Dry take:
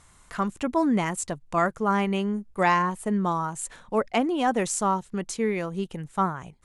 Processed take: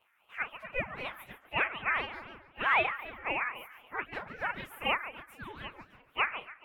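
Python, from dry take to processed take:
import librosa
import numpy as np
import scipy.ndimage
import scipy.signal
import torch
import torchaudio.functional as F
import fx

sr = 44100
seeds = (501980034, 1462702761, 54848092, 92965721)

y = fx.pitch_bins(x, sr, semitones=7.5)
y = scipy.signal.sosfilt(scipy.signal.butter(2, 1100.0, 'highpass', fs=sr, output='sos'), y)
y = fx.high_shelf_res(y, sr, hz=2900.0, db=-13.0, q=3.0)
y = fx.doubler(y, sr, ms=34.0, db=-12.5)
y = fx.echo_feedback(y, sr, ms=142, feedback_pct=42, wet_db=-12.5)
y = fx.ring_lfo(y, sr, carrier_hz=610.0, swing_pct=65, hz=3.9)
y = y * librosa.db_to_amplitude(-4.5)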